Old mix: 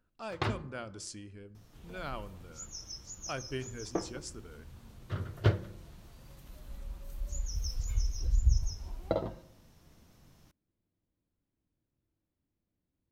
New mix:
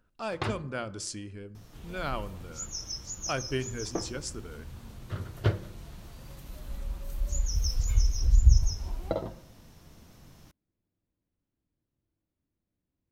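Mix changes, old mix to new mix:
speech +6.5 dB
second sound +7.0 dB

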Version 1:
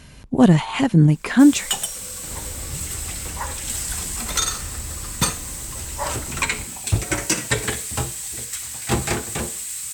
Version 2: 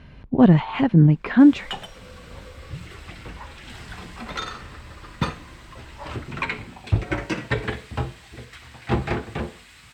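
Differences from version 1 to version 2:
second sound −10.0 dB
master: add high-frequency loss of the air 340 metres

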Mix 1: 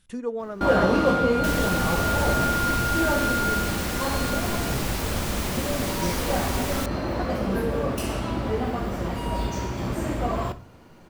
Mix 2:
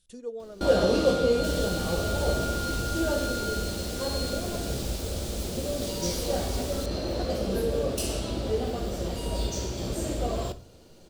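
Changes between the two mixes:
speech −6.5 dB
second sound −9.5 dB
master: add octave-band graphic EQ 125/250/500/1,000/2,000/4,000/8,000 Hz −5/−5/+4/−11/−9/+6/+5 dB

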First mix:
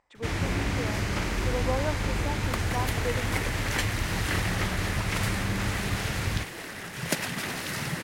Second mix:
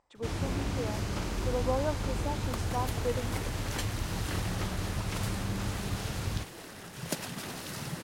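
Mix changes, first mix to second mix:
first sound −4.0 dB
second sound −5.0 dB
master: add parametric band 2,000 Hz −8 dB 0.88 octaves

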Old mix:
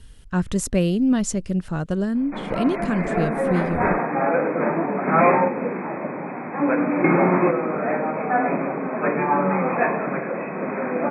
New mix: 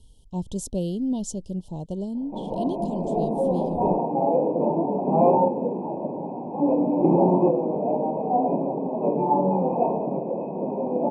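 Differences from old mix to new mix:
speech −6.5 dB
master: add Chebyshev band-stop filter 930–3,100 Hz, order 4

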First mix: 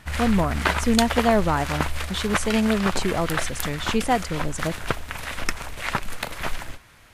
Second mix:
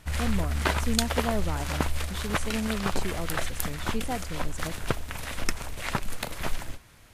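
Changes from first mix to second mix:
speech −8.5 dB
master: add parametric band 1,600 Hz −6 dB 2.7 octaves

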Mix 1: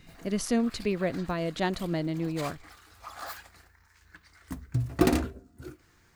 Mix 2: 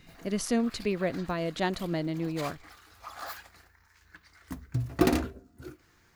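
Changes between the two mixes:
background: add parametric band 8,300 Hz −4.5 dB 0.32 octaves
master: add low-shelf EQ 180 Hz −3 dB

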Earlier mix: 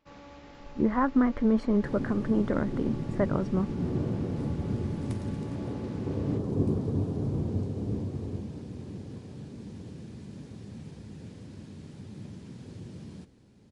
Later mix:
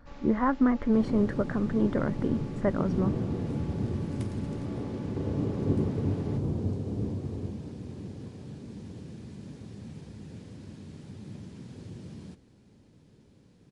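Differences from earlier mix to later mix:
speech: entry −0.55 s
second sound: entry −0.90 s

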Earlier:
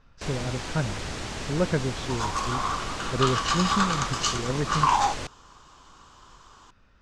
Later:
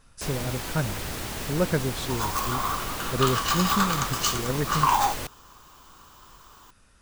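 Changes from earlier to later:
speech: remove high-frequency loss of the air 180 metres
master: remove low-pass filter 7,600 Hz 24 dB per octave

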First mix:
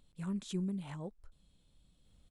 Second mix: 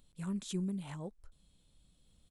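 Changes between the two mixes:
background −5.5 dB
master: add high-shelf EQ 6,400 Hz +7.5 dB

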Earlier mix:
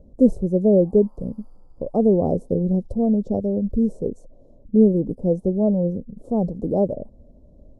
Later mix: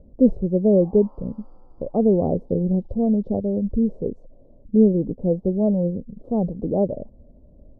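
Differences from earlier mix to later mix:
background +9.5 dB
master: add high-frequency loss of the air 350 metres

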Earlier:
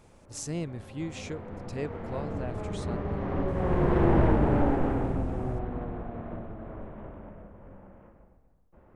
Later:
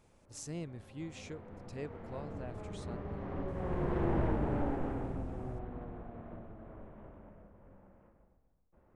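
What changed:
speech −8.0 dB
background −9.5 dB

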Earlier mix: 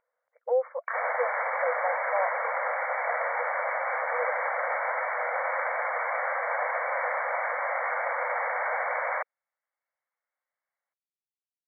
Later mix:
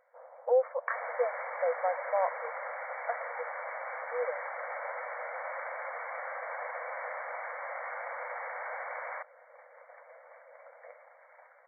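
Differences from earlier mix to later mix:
first sound: unmuted
second sound −10.0 dB

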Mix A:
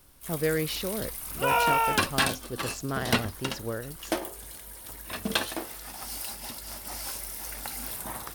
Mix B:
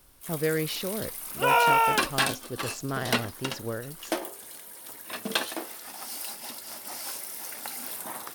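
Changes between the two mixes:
first sound: add high-pass filter 230 Hz 12 dB per octave
second sound +3.0 dB

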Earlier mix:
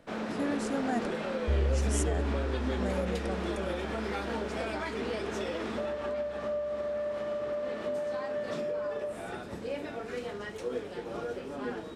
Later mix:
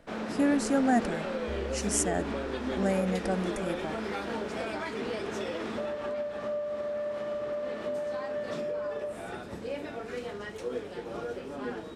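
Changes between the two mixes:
speech +7.5 dB
second sound: add bass and treble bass −12 dB, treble +10 dB

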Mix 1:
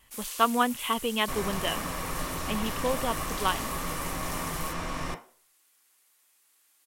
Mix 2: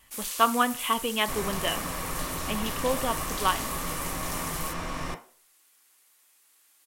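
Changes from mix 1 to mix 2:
speech: send on
first sound +3.5 dB

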